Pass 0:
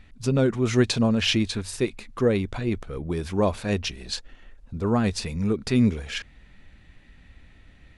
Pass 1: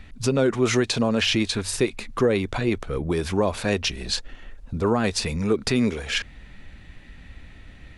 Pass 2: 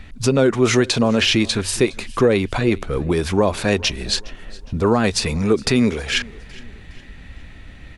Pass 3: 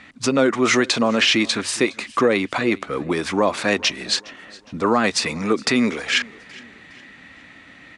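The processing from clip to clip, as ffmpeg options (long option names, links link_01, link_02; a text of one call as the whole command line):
ffmpeg -i in.wav -filter_complex "[0:a]acrossover=split=320[link_01][link_02];[link_01]acompressor=threshold=-33dB:ratio=6[link_03];[link_02]alimiter=limit=-20dB:level=0:latency=1:release=98[link_04];[link_03][link_04]amix=inputs=2:normalize=0,volume=7dB" out.wav
ffmpeg -i in.wav -af "aecho=1:1:412|824|1236:0.075|0.0307|0.0126,volume=5dB" out.wav
ffmpeg -i in.wav -af "highpass=240,equalizer=frequency=280:width_type=q:width=4:gain=3,equalizer=frequency=410:width_type=q:width=4:gain=-5,equalizer=frequency=1200:width_type=q:width=4:gain=5,equalizer=frequency=2000:width_type=q:width=4:gain=5,lowpass=frequency=9200:width=0.5412,lowpass=frequency=9200:width=1.3066" out.wav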